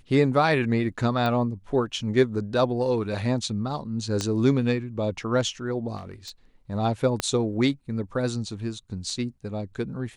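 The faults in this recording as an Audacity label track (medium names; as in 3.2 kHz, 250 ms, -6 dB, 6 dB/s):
1.260000	1.260000	pop -16 dBFS
4.210000	4.210000	pop -15 dBFS
5.960000	6.310000	clipped -33.5 dBFS
7.200000	7.200000	pop -10 dBFS
9.100000	9.100000	dropout 2.7 ms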